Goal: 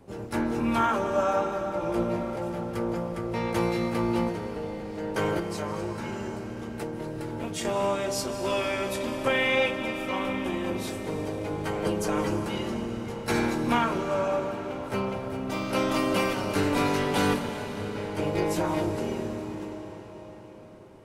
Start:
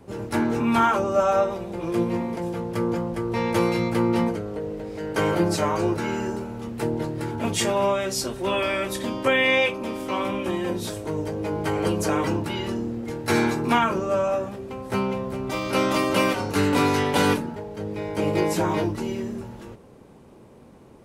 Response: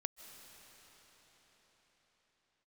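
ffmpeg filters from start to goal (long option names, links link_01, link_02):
-filter_complex "[0:a]asettb=1/sr,asplit=3[link_01][link_02][link_03];[link_01]atrim=end=5.394[link_04];[link_02]atrim=start=5.39:end=7.65,asetpts=PTS-STARTPTS,afade=type=in:duration=0.004:curve=qsin,afade=type=out:start_time=2.256:duration=0.004:curve=qsin,acompressor=threshold=-26dB:ratio=6[link_05];[link_03]atrim=start=7.646[link_06];[link_04][link_05]acrossfade=duration=0.004:curve1=hsin:curve2=qsin[link_07];[link_07][link_06]acrossfade=duration=0.004:curve1=qsin:curve2=hsin,tremolo=f=290:d=0.462[link_08];[1:a]atrim=start_sample=2205[link_09];[link_08][link_09]afir=irnorm=-1:irlink=0"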